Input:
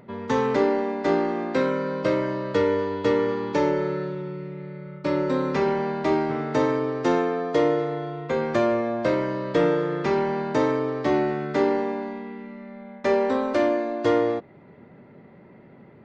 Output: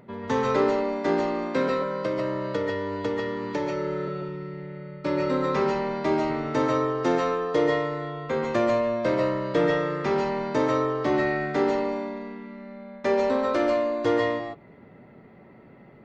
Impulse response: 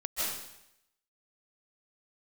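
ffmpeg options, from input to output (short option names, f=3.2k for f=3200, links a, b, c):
-filter_complex "[0:a]asettb=1/sr,asplit=3[a][b][c];[a]atrim=end=1.684[d];[b]atrim=start=1.68:end=4.08,asetpts=PTS-STARTPTS,afade=t=in:d=0.004:c=qsin,afade=t=out:st=2.396:d=0.004:c=qsin,acrossover=split=83|310[e][f][g];[e]acompressor=threshold=-56dB:ratio=4[h];[f]acompressor=threshold=-31dB:ratio=4[i];[g]acompressor=threshold=-26dB:ratio=4[j];[h][i][j]amix=inputs=3:normalize=0[k];[c]atrim=start=4.076[l];[d][k]acrossfade=d=0.004:c1=hsin:c2=qsin[m];[m][l]acrossfade=d=0.004:c1=qsin:c2=hsin[n];[1:a]atrim=start_sample=2205,atrim=end_sample=6615[o];[n][o]afir=irnorm=-1:irlink=0"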